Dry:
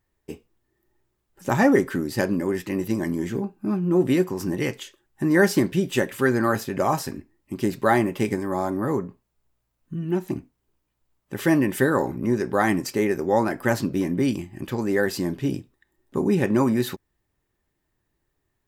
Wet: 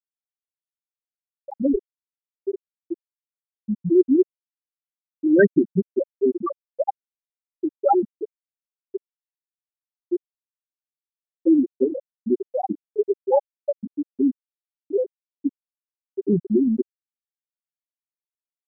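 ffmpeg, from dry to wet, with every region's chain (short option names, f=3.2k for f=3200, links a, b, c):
-filter_complex "[0:a]asettb=1/sr,asplit=3[a][b][c];[a]atrim=end=1.534[d];[b]atrim=start=1.53:end=2.41,asetpts=PTS-STARTPTS,afade=t=in:d=0.004:c=qsin,afade=t=out:st=0.876:d=0.004:c=qsin,aeval=exprs='(tanh(5.62*val(0)+0.6)-tanh(0.6))/5.62':c=same,asubboost=boost=9:cutoff=160[e];[c]atrim=start=2.406[f];[d][e]acrossfade=d=0.004:c1=hsin:c2=qsin[g];[g][f]acrossfade=d=0.004:c1=qsin:c2=hsin,lowshelf=f=150:g=-5.5,afftfilt=real='re*gte(hypot(re,im),0.708)':imag='im*gte(hypot(re,im),0.708)':win_size=1024:overlap=0.75,equalizer=f=9.5k:w=0.36:g=8.5,volume=5.5dB"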